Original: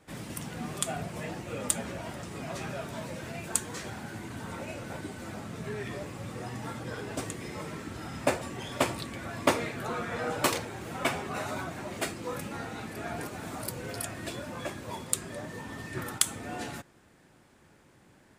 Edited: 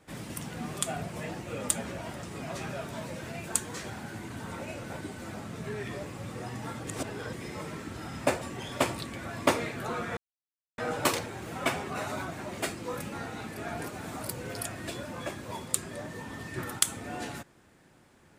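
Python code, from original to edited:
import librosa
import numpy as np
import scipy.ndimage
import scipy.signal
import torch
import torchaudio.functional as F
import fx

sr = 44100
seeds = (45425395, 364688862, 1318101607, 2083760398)

y = fx.edit(x, sr, fx.reverse_span(start_s=6.87, length_s=0.46),
    fx.insert_silence(at_s=10.17, length_s=0.61), tone=tone)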